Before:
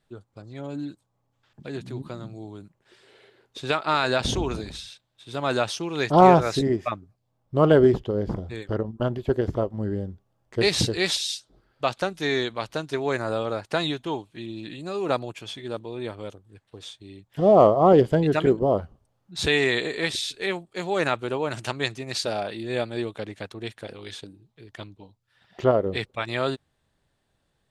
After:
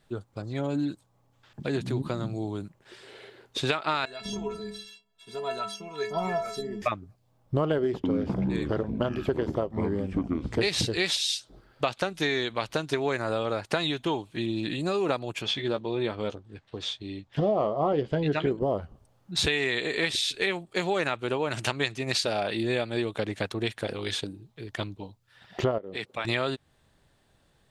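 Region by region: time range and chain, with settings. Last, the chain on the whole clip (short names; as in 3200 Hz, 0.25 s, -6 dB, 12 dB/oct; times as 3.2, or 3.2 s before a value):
4.05–6.82 metallic resonator 200 Hz, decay 0.46 s, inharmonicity 0.03 + three-band squash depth 40%
7.78–10.6 HPF 200 Hz 6 dB/oct + echoes that change speed 0.257 s, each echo -6 st, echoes 2, each echo -6 dB
15.42–18.51 Chebyshev low-pass 4700 Hz + doubler 14 ms -10 dB
25.78–26.25 HPF 170 Hz + compressor 2:1, threshold -42 dBFS
whole clip: dynamic EQ 2600 Hz, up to +4 dB, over -41 dBFS, Q 1.1; compressor 6:1, threshold -31 dBFS; gain +7 dB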